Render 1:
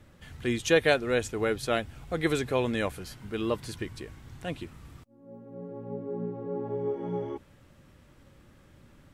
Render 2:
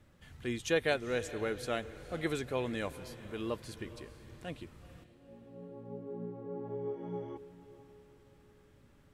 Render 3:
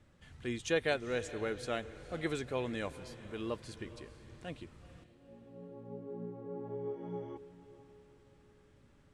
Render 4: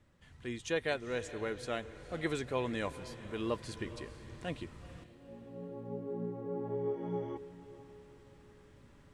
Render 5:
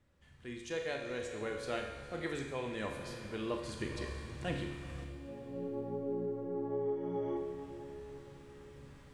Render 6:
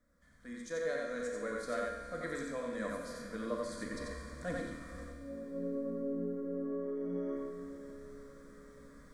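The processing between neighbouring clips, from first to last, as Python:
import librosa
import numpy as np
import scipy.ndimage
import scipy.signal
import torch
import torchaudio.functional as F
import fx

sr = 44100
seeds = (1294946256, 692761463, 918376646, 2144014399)

y1 = fx.echo_diffused(x, sr, ms=463, feedback_pct=42, wet_db=-15)
y1 = y1 * 10.0 ** (-7.5 / 20.0)
y2 = scipy.signal.sosfilt(scipy.signal.butter(4, 9800.0, 'lowpass', fs=sr, output='sos'), y1)
y2 = y2 * 10.0 ** (-1.5 / 20.0)
y3 = fx.rider(y2, sr, range_db=4, speed_s=2.0)
y3 = fx.small_body(y3, sr, hz=(1000.0, 1900.0), ring_ms=95, db=9)
y3 = y3 * 10.0 ** (1.0 / 20.0)
y4 = fx.rider(y3, sr, range_db=5, speed_s=0.5)
y4 = fx.comb_fb(y4, sr, f0_hz=70.0, decay_s=1.5, harmonics='all', damping=0.0, mix_pct=80)
y4 = fx.rev_schroeder(y4, sr, rt60_s=0.86, comb_ms=29, drr_db=5.5)
y4 = y4 * 10.0 ** (9.5 / 20.0)
y5 = fx.peak_eq(y4, sr, hz=110.0, db=-8.0, octaves=0.45)
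y5 = fx.fixed_phaser(y5, sr, hz=560.0, stages=8)
y5 = y5 + 10.0 ** (-3.0 / 20.0) * np.pad(y5, (int(90 * sr / 1000.0), 0))[:len(y5)]
y5 = y5 * 10.0 ** (1.5 / 20.0)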